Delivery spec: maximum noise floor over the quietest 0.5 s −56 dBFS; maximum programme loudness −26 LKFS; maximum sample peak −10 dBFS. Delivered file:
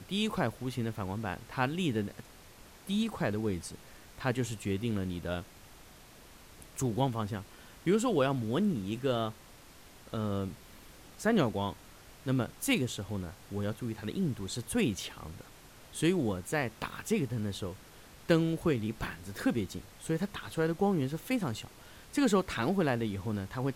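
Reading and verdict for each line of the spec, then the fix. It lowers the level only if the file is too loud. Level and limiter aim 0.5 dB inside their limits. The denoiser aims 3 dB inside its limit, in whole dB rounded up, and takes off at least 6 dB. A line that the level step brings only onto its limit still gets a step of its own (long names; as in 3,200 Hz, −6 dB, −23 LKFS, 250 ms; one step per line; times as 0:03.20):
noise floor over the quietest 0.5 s −54 dBFS: out of spec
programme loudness −33.0 LKFS: in spec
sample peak −13.0 dBFS: in spec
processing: broadband denoise 6 dB, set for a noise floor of −54 dBFS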